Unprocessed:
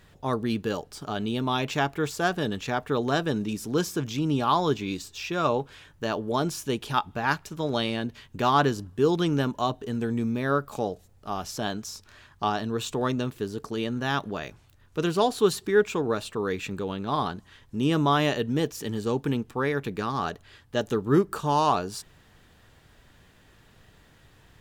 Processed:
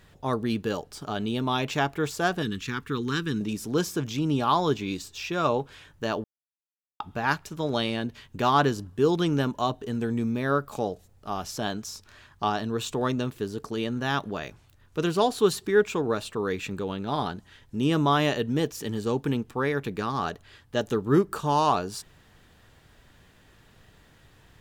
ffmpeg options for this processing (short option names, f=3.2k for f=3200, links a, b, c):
-filter_complex "[0:a]asettb=1/sr,asplit=3[a][b][c];[a]atrim=end=2.424[d];[b]atrim=start=2.42:end=3.41,asetpts=PTS-STARTPTS,afade=t=in:d=0.004:c=qsin,afade=t=out:st=0.986:d=0.004:c=qsin,asuperstop=centerf=650:order=4:qfactor=0.85[e];[c]atrim=start=3.406[f];[d][e]acrossfade=d=0.004:c1=hsin:c2=qsin[g];[g][f]acrossfade=d=0.004:c1=qsin:c2=hsin,asettb=1/sr,asplit=3[h][i][j];[h]atrim=end=17.004[k];[i]atrim=start=17:end=17.81,asetpts=PTS-STARTPTS,afade=t=in:d=0.004:c=qsin,afade=t=out:st=0.806:d=0.004:c=qsin,bandreject=f=1.1k:w=8[l];[j]atrim=start=17.806[m];[k][l]acrossfade=d=0.004:c1=hsin:c2=qsin[n];[n][m]acrossfade=d=0.004:c1=qsin:c2=hsin,asplit=3[o][p][q];[o]atrim=end=6.24,asetpts=PTS-STARTPTS,afade=t=out:st=6.236:d=0.004:c=hsin[r];[p]atrim=start=6.24:end=7,asetpts=PTS-STARTPTS,volume=0[s];[q]atrim=start=7,asetpts=PTS-STARTPTS,afade=t=in:d=0.004:c=hsin[t];[r][s][t]concat=n=3:v=0:a=1"